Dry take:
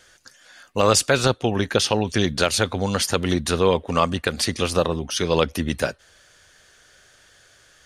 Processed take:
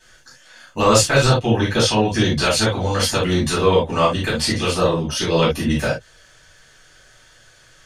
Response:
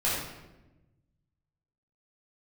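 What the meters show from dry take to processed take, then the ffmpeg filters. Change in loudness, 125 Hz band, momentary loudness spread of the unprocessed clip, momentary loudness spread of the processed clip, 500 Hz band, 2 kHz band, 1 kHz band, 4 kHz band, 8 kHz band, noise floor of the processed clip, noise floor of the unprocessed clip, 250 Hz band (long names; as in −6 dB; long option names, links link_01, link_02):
+3.5 dB, +5.5 dB, 6 LU, 6 LU, +3.0 dB, +3.5 dB, +3.5 dB, +3.0 dB, +2.0 dB, −51 dBFS, −55 dBFS, +4.0 dB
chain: -filter_complex "[1:a]atrim=start_sample=2205,atrim=end_sample=6174,asetrate=74970,aresample=44100[link_01];[0:a][link_01]afir=irnorm=-1:irlink=0,volume=-2dB"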